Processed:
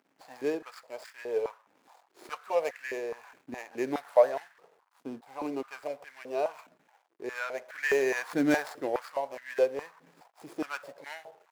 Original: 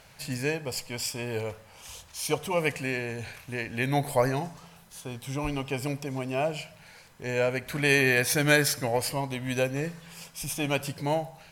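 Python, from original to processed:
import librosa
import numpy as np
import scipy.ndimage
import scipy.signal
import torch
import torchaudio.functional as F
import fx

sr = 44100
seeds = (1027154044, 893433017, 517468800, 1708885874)

y = scipy.signal.medfilt(x, 15)
y = np.sign(y) * np.maximum(np.abs(y) - 10.0 ** (-55.0 / 20.0), 0.0)
y = fx.filter_held_highpass(y, sr, hz=4.8, low_hz=270.0, high_hz=1700.0)
y = F.gain(torch.from_numpy(y), -6.0).numpy()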